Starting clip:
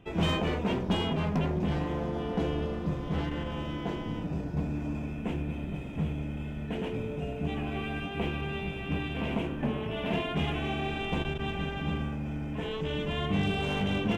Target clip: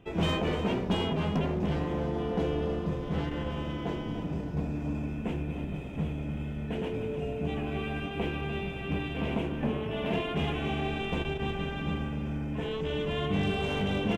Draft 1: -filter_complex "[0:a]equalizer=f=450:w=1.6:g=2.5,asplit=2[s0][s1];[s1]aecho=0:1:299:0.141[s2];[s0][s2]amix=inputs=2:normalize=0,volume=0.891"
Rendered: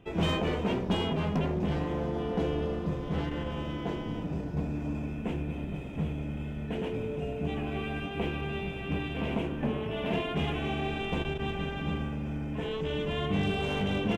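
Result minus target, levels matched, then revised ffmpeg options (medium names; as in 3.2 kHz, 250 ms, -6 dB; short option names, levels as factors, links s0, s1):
echo-to-direct -6 dB
-filter_complex "[0:a]equalizer=f=450:w=1.6:g=2.5,asplit=2[s0][s1];[s1]aecho=0:1:299:0.282[s2];[s0][s2]amix=inputs=2:normalize=0,volume=0.891"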